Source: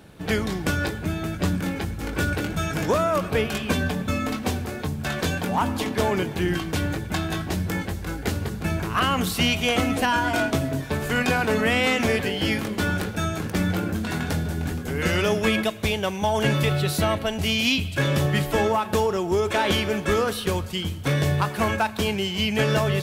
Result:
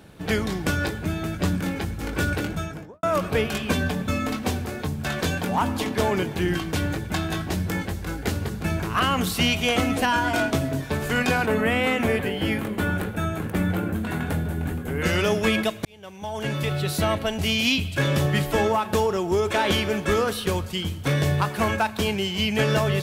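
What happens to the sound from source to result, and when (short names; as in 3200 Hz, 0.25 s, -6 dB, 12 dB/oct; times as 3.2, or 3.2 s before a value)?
2.39–3.03 studio fade out
11.46–15.04 bell 5300 Hz -12.5 dB 1.1 oct
15.85–17.13 fade in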